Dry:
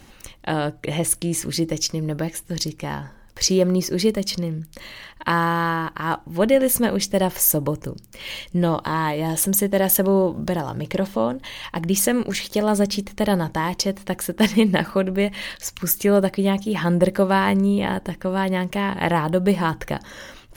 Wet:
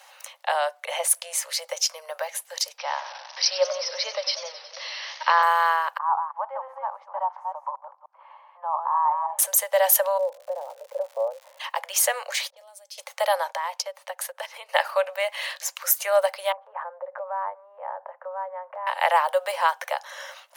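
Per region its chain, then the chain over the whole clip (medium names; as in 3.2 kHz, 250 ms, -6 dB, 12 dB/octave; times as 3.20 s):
2.78–5.43 s: zero-crossing glitches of -22.5 dBFS + Chebyshev low-pass 5.8 kHz, order 10 + modulated delay 92 ms, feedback 70%, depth 177 cents, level -12 dB
5.98–9.39 s: chunks repeated in reverse 173 ms, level -5 dB + Butterworth band-pass 950 Hz, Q 2.6
10.17–11.59 s: resonant low-pass 400 Hz, resonance Q 1.8 + crackle 230 per s -38 dBFS
12.50–12.98 s: level-controlled noise filter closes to 440 Hz, open at -17 dBFS + compression 8:1, threshold -32 dBFS + peaking EQ 1.1 kHz -14.5 dB 2.8 oct
13.49–14.69 s: transient shaper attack +9 dB, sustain -6 dB + treble shelf 6.1 kHz -4 dB + compression 8:1, threshold -24 dBFS
16.52–18.87 s: low-pass 1.3 kHz 24 dB/octave + compression 12:1, threshold -25 dBFS
whole clip: steep high-pass 530 Hz 96 dB/octave; peaking EQ 910 Hz +4 dB 0.89 oct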